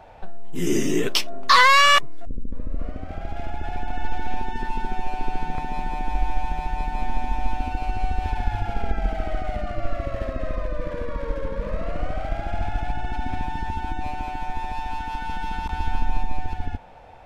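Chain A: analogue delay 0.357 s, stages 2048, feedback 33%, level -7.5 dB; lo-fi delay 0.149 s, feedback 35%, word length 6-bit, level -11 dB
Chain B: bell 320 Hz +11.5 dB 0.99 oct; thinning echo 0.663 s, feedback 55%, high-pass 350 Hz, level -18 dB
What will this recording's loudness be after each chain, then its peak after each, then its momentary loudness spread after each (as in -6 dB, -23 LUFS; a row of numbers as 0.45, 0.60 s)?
-25.0, -23.5 LUFS; -2.5, -2.5 dBFS; 10, 14 LU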